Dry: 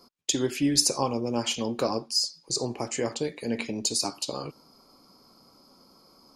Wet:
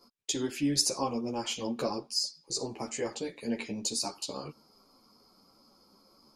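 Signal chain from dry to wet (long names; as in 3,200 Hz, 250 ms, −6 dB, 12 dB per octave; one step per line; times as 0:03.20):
string-ensemble chorus
level −2 dB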